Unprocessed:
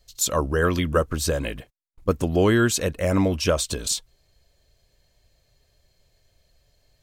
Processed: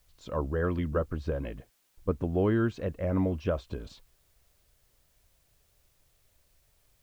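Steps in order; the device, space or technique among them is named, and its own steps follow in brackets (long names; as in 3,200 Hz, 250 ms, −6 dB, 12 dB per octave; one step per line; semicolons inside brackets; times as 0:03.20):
cassette deck with a dirty head (head-to-tape spacing loss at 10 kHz 45 dB; tape wow and flutter; white noise bed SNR 38 dB)
level −5.5 dB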